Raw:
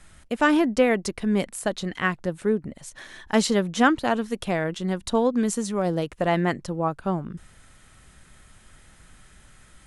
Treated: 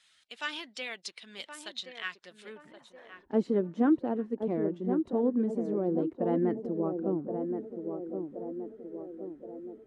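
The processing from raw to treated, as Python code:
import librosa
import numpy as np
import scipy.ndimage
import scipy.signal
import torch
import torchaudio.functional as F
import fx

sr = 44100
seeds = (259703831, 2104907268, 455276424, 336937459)

y = fx.spec_quant(x, sr, step_db=15)
y = fx.filter_sweep_bandpass(y, sr, from_hz=3700.0, to_hz=320.0, start_s=2.43, end_s=3.2, q=2.1)
y = fx.echo_banded(y, sr, ms=1073, feedback_pct=61, hz=430.0, wet_db=-5)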